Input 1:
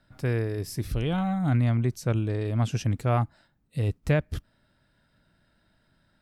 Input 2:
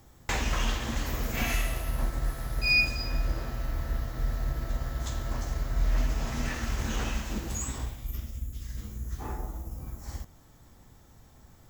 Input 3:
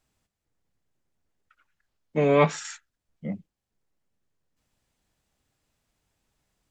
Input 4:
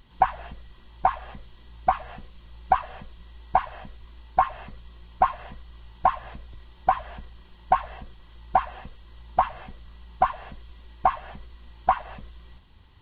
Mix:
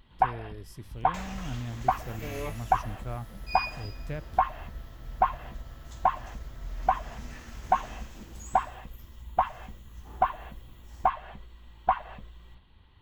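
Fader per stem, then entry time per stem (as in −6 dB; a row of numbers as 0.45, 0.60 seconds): −13.5, −12.0, −18.5, −3.5 decibels; 0.00, 0.85, 0.05, 0.00 seconds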